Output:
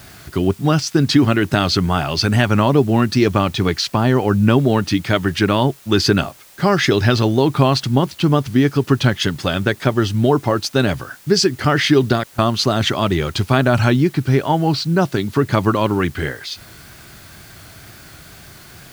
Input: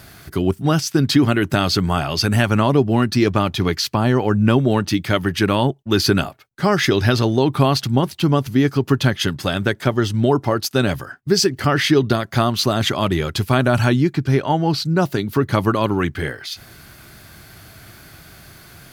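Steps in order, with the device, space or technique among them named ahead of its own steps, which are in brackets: worn cassette (LPF 7900 Hz; wow and flutter; level dips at 12.24, 0.142 s -25 dB; white noise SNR 29 dB); gain +1.5 dB

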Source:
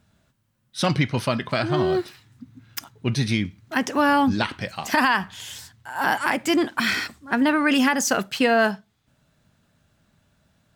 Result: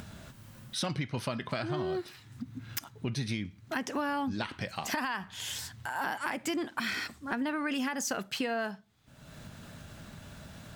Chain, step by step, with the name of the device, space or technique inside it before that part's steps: upward and downward compression (upward compressor, threshold -22 dBFS; compressor 6:1, threshold -23 dBFS, peak gain reduction 8.5 dB); gain -6.5 dB

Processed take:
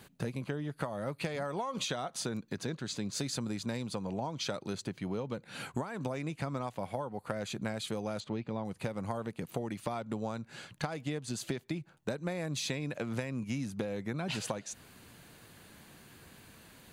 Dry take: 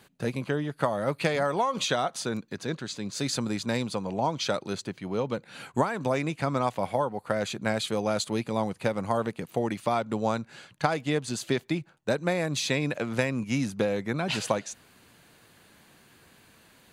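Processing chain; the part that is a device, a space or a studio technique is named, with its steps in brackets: 8.2–8.65 air absorption 180 m; ASMR close-microphone chain (low shelf 230 Hz +6 dB; compressor 6:1, threshold -33 dBFS, peak gain reduction 15.5 dB; high shelf 9000 Hz +4 dB)

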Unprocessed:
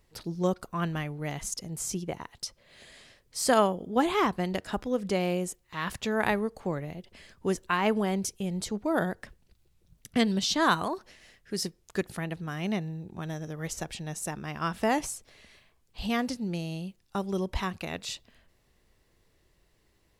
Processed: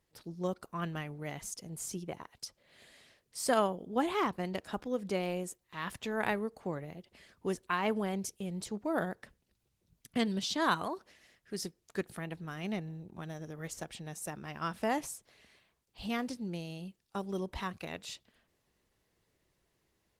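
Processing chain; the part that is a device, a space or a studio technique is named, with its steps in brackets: video call (HPF 100 Hz 6 dB/oct; AGC gain up to 3.5 dB; gain -8.5 dB; Opus 20 kbps 48000 Hz)

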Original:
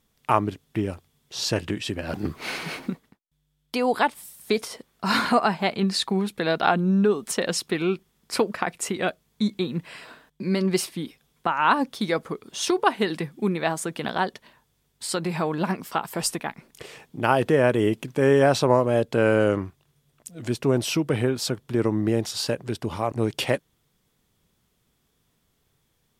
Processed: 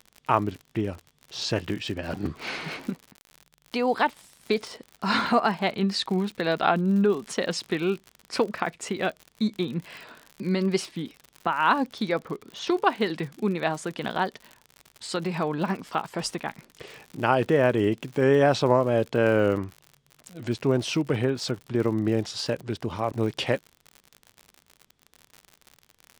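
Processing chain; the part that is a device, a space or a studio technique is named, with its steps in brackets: 12.09–12.7 Bessel low-pass 3500 Hz, order 2; lo-fi chain (LPF 5900 Hz 12 dB/oct; wow and flutter; crackle 75/s -32 dBFS); gain -1.5 dB

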